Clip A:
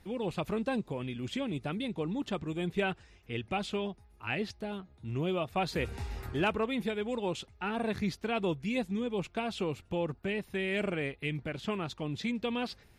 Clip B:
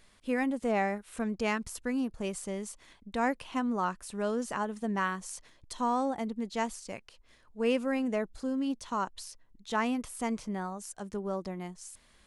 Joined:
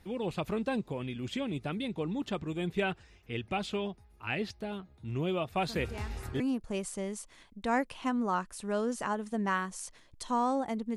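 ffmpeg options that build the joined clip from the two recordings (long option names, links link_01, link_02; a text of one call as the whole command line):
ffmpeg -i cue0.wav -i cue1.wav -filter_complex "[1:a]asplit=2[link_01][link_02];[0:a]apad=whole_dur=10.96,atrim=end=10.96,atrim=end=6.402[link_03];[link_02]atrim=start=1.898:end=6.46[link_04];[link_01]atrim=start=1.04:end=1.9,asetpts=PTS-STARTPTS,volume=-14dB,afade=type=in:duration=0.004:curve=hsin,afade=type=out:start_time=0.856:duration=0.004:curve=hsin,adelay=5540[link_05];[link_03][link_04]acrossfade=duration=0.004:curve1=hsin:curve2=hsin[link_06];[link_06][link_05]amix=inputs=2:normalize=0" out.wav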